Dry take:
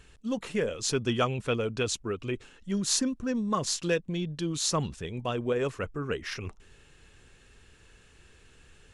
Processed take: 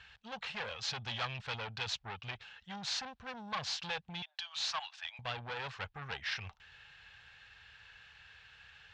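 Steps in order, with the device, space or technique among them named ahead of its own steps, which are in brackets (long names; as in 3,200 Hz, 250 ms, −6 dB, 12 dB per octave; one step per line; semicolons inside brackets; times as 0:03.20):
0:04.22–0:05.19: Butterworth high-pass 650 Hz 72 dB per octave
scooped metal amplifier (tube saturation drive 32 dB, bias 0.45; loudspeaker in its box 98–4,200 Hz, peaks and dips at 380 Hz −5 dB, 810 Hz +8 dB, 1,600 Hz +6 dB; guitar amp tone stack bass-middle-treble 10-0-10)
dynamic equaliser 1,600 Hz, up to −4 dB, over −60 dBFS, Q 1.2
level +8.5 dB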